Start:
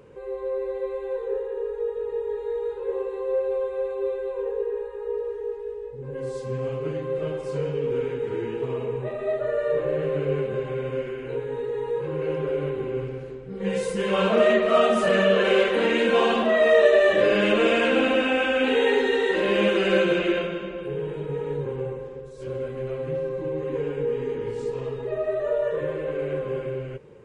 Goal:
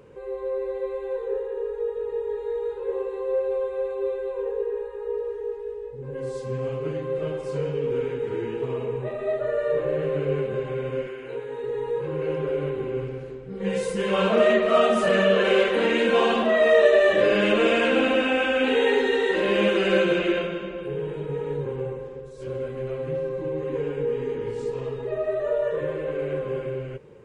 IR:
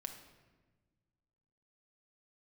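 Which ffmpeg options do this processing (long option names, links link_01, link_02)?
-filter_complex "[0:a]asettb=1/sr,asplit=3[link_01][link_02][link_03];[link_01]atrim=end=11.074[link_04];[link_02]atrim=start=11.07:end=11.64,asetpts=PTS-STARTPTS,afade=type=in:duration=0.004:curve=qsin,afade=type=out:start_time=0.566:duration=0.004:curve=qsin,lowshelf=frequency=260:gain=-12[link_05];[link_03]atrim=start=11.636[link_06];[link_04][link_05]acrossfade=duration=0.004:curve1=hsin:curve2=qsin[link_07];[link_07][link_06]acrossfade=duration=0.004:curve1=qsin:curve2=hsin"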